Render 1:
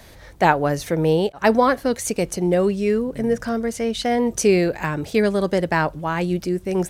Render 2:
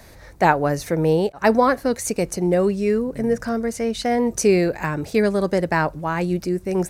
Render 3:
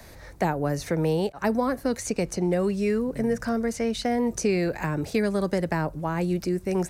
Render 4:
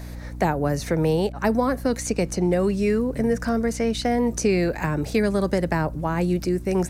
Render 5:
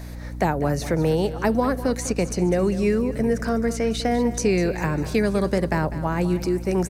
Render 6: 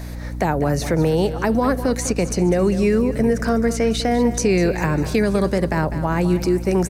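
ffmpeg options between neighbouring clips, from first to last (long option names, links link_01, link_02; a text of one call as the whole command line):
ffmpeg -i in.wav -af "equalizer=frequency=3200:width=3.8:gain=-8" out.wav
ffmpeg -i in.wav -filter_complex "[0:a]acrossover=split=290|660|7500[link_01][link_02][link_03][link_04];[link_01]acompressor=threshold=-24dB:ratio=4[link_05];[link_02]acompressor=threshold=-29dB:ratio=4[link_06];[link_03]acompressor=threshold=-30dB:ratio=4[link_07];[link_04]acompressor=threshold=-46dB:ratio=4[link_08];[link_05][link_06][link_07][link_08]amix=inputs=4:normalize=0,volume=-1dB" out.wav
ffmpeg -i in.wav -af "aeval=exprs='val(0)+0.0141*(sin(2*PI*60*n/s)+sin(2*PI*2*60*n/s)/2+sin(2*PI*3*60*n/s)/3+sin(2*PI*4*60*n/s)/4+sin(2*PI*5*60*n/s)/5)':channel_layout=same,volume=3dB" out.wav
ffmpeg -i in.wav -af "aecho=1:1:200|400|600|800|1000:0.2|0.0978|0.0479|0.0235|0.0115" out.wav
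ffmpeg -i in.wav -af "alimiter=limit=-13.5dB:level=0:latency=1:release=50,volume=4.5dB" out.wav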